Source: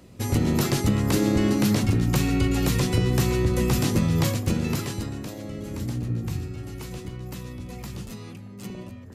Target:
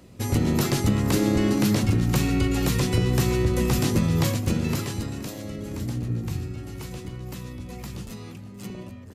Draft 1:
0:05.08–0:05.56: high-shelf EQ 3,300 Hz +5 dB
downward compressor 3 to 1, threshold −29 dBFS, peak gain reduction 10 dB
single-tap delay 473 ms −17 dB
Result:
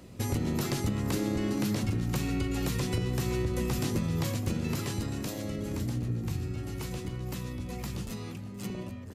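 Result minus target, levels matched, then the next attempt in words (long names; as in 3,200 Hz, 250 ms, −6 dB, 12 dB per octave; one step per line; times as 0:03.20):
downward compressor: peak gain reduction +10 dB
0:05.08–0:05.56: high-shelf EQ 3,300 Hz +5 dB
single-tap delay 473 ms −17 dB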